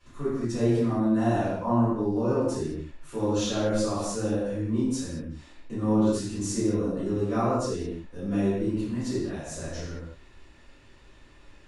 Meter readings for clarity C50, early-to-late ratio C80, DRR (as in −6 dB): −1.5 dB, 1.5 dB, −14.0 dB